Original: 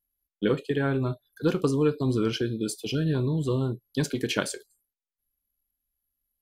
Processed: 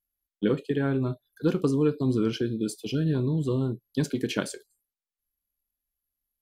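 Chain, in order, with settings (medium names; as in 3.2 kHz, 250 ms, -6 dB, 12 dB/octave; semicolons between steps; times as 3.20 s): dynamic bell 230 Hz, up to +6 dB, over -38 dBFS, Q 0.76; trim -4 dB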